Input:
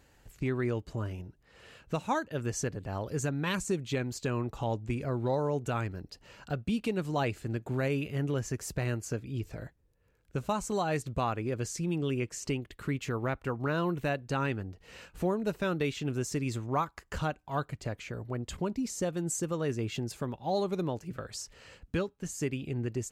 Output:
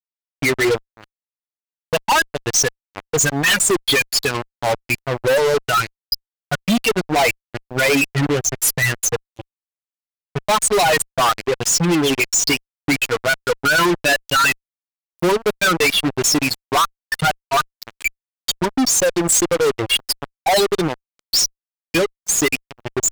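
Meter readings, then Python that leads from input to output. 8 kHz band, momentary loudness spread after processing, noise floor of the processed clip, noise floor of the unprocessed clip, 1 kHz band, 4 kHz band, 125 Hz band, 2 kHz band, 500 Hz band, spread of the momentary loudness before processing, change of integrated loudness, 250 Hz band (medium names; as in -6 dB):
+22.5 dB, 9 LU, under -85 dBFS, -67 dBFS, +15.5 dB, +24.0 dB, +5.0 dB, +21.0 dB, +13.5 dB, 8 LU, +15.5 dB, +10.0 dB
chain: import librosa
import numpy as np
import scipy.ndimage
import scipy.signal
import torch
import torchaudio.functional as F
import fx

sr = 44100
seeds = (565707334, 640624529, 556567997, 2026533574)

y = fx.bin_expand(x, sr, power=3.0)
y = scipy.signal.sosfilt(scipy.signal.butter(2, 230.0, 'highpass', fs=sr, output='sos'), y)
y = fx.tilt_shelf(y, sr, db=-7.0, hz=670.0)
y = fx.fuzz(y, sr, gain_db=55.0, gate_db=-53.0)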